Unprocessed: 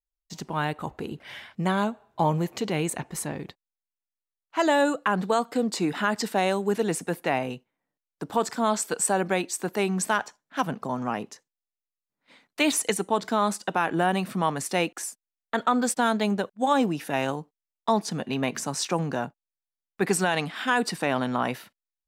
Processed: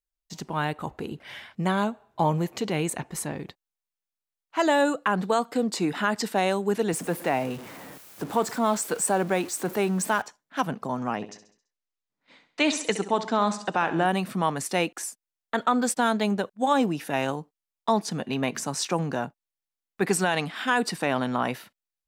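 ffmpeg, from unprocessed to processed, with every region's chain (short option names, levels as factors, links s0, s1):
-filter_complex "[0:a]asettb=1/sr,asplit=3[s0][s1][s2];[s0]atrim=end=6.934[s3];[s1]atrim=start=6.93:end=10.22,asetpts=PTS-STARTPTS,afade=t=in:d=0.004:c=qsin,afade=t=out:st=3.286:d=0.004:c=qsin,aeval=exprs='val(0)+0.5*0.0188*sgn(val(0))':c=same,highpass=92,equalizer=f=4000:t=o:w=2.2:g=-4[s4];[s2]atrim=start=10.216[s5];[s3][s4]acrossfade=d=0.004:c1=hsin:c2=qsin[s6];[s6][s5]acrossfade=d=0.004:c1=qsin:c2=hsin,asettb=1/sr,asplit=3[s7][s8][s9];[s7]atrim=end=11.154[s10];[s8]atrim=start=11.15:end=14.06,asetpts=PTS-STARTPTS,afade=t=in:d=0.004:c=qsin,afade=t=out:st=2.906:d=0.004:c=qsin,lowpass=f=7300:w=0.5412,lowpass=f=7300:w=1.3066,aecho=1:1:67|134|201|268|335:0.237|0.116|0.0569|0.0279|0.0137,atrim=end_sample=128331[s11];[s9]atrim=start=14.056[s12];[s10][s11]acrossfade=d=0.004:c1=hsin:c2=qsin[s13];[s13][s12]acrossfade=d=0.004:c1=qsin:c2=hsin"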